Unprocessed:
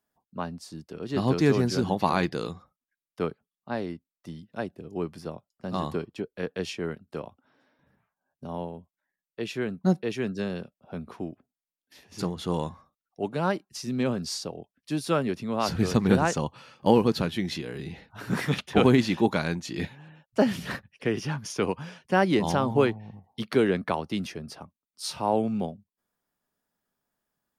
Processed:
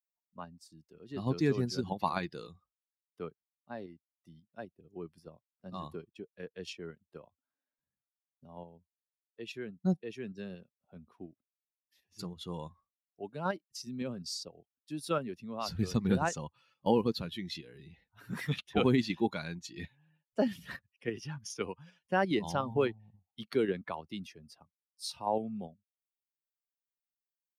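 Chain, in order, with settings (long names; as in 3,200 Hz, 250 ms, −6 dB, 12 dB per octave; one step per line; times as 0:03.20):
spectral dynamics exaggerated over time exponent 1.5
dynamic equaliser 4,300 Hz, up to +3 dB, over −49 dBFS, Q 2
in parallel at +1 dB: output level in coarse steps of 14 dB
on the sum: level −8.5 dB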